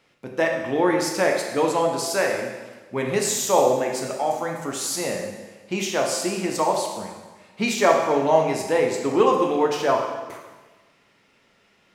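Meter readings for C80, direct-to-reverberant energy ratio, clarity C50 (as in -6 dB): 6.0 dB, 0.5 dB, 4.0 dB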